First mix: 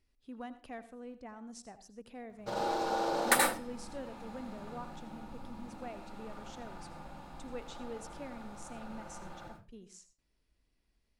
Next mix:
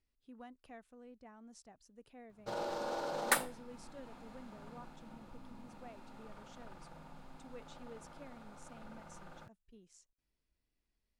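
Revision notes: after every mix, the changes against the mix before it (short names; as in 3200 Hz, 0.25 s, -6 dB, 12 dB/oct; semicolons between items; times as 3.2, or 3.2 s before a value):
speech -7.5 dB; reverb: off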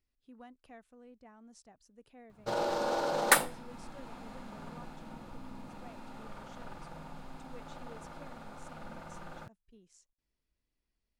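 background +7.0 dB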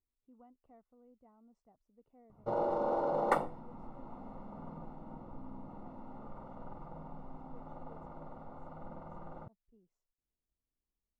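speech -7.0 dB; master: add polynomial smoothing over 65 samples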